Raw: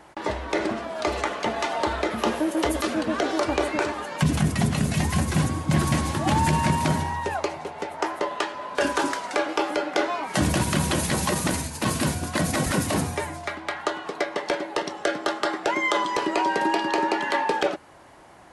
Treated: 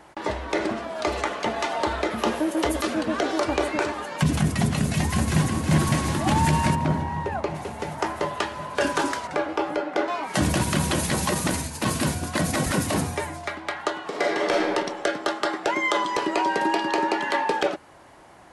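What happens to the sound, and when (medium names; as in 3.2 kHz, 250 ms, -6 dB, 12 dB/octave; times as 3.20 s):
4.80–5.48 s: echo throw 360 ms, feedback 80%, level -6.5 dB
6.74–7.54 s: low-pass 1.1 kHz -> 1.8 kHz 6 dB/octave
9.27–10.08 s: treble shelf 2.6 kHz -10.5 dB
14.08–14.68 s: reverb throw, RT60 1.4 s, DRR -3 dB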